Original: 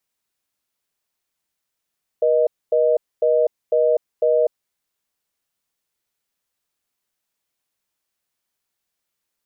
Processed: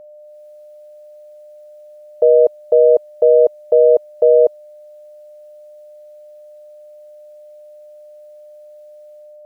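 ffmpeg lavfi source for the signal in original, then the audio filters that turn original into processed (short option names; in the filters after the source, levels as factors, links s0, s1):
-f lavfi -i "aevalsrc='0.15*(sin(2*PI*480*t)+sin(2*PI*620*t))*clip(min(mod(t,0.5),0.25-mod(t,0.5))/0.005,0,1)':d=2.34:s=44100"
-af "equalizer=f=650:t=o:w=0.74:g=-5,dynaudnorm=f=120:g=5:m=3.76,aeval=exprs='val(0)+0.0126*sin(2*PI*600*n/s)':c=same"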